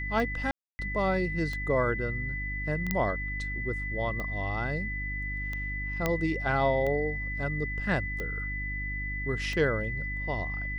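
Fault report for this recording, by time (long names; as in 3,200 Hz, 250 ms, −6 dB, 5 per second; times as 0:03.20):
mains hum 50 Hz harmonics 6 −36 dBFS
scratch tick 45 rpm
whistle 2,000 Hz −34 dBFS
0:00.51–0:00.79: drop-out 280 ms
0:02.91: click −12 dBFS
0:06.06: click −12 dBFS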